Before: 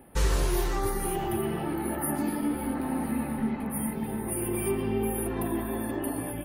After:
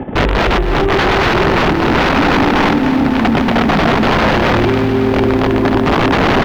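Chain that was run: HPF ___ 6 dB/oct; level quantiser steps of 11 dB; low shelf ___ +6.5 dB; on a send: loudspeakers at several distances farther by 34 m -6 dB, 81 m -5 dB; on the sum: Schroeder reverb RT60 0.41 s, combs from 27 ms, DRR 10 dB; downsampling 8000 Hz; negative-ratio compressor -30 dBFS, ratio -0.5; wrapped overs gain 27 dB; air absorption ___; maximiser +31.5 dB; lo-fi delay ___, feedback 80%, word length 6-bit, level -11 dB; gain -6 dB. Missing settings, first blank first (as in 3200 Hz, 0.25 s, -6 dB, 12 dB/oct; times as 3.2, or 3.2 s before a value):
100 Hz, 440 Hz, 260 m, 0.274 s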